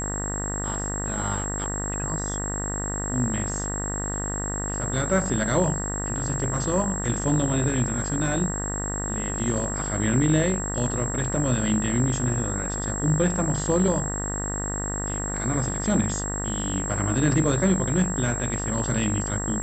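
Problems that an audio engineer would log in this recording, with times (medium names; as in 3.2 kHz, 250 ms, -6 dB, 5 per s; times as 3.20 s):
buzz 50 Hz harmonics 39 -31 dBFS
whine 7.6 kHz -30 dBFS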